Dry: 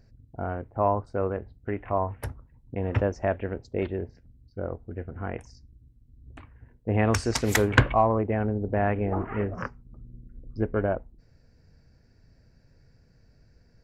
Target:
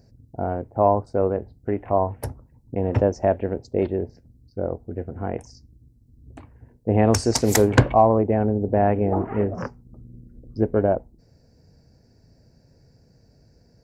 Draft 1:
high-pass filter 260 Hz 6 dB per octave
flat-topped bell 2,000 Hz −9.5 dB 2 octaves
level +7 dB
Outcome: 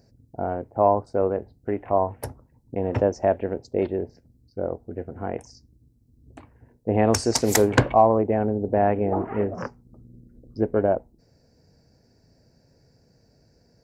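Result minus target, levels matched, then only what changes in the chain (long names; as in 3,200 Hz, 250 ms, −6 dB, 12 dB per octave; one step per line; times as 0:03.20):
125 Hz band −3.5 dB
change: high-pass filter 110 Hz 6 dB per octave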